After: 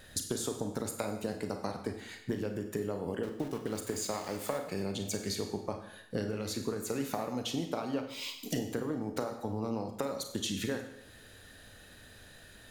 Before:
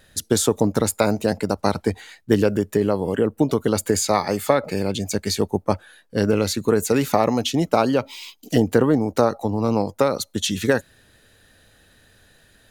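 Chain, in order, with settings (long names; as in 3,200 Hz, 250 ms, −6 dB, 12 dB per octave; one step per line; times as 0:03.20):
downward compressor 12 to 1, threshold −32 dBFS, peak gain reduction 21.5 dB
0:03.23–0:04.58: centre clipping without the shift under −43 dBFS
convolution reverb RT60 0.80 s, pre-delay 27 ms, DRR 5 dB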